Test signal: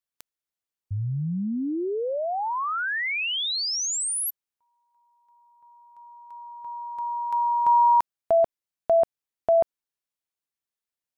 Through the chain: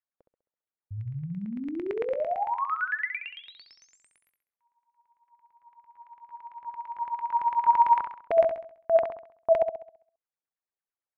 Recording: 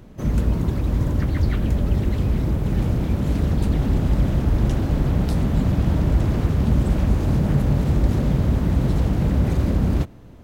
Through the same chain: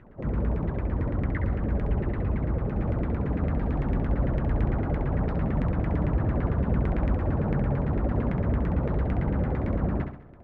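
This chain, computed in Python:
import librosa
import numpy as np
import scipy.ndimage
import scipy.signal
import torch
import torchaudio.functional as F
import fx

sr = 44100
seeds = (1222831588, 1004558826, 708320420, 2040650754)

y = fx.filter_lfo_lowpass(x, sr, shape='saw_down', hz=8.9, low_hz=420.0, high_hz=2200.0, q=3.8)
y = fx.room_flutter(y, sr, wall_m=11.4, rt60_s=0.56)
y = F.gain(torch.from_numpy(y), -8.0).numpy()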